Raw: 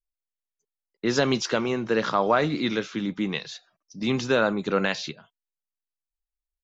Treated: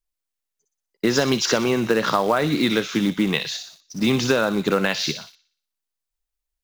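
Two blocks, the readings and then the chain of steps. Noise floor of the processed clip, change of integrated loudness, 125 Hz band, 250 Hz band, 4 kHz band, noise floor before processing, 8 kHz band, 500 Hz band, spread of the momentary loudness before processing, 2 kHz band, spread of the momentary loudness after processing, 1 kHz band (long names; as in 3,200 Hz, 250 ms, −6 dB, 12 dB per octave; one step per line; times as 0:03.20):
−84 dBFS, +4.0 dB, +5.0 dB, +5.0 dB, +7.0 dB, below −85 dBFS, can't be measured, +3.0 dB, 9 LU, +4.0 dB, 6 LU, +2.0 dB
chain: delay with a high-pass on its return 60 ms, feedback 48%, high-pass 3,900 Hz, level −3 dB
in parallel at −6 dB: log-companded quantiser 4 bits
on the sum: downward compressor, threshold −21 dBFS, peak gain reduction 9 dB
level +5.5 dB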